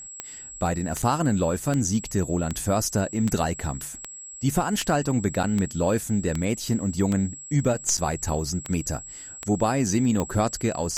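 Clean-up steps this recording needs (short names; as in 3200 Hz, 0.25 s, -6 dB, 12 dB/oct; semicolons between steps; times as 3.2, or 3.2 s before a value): de-click; notch 7700 Hz, Q 30; interpolate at 1.02/5.43/7.97, 6.3 ms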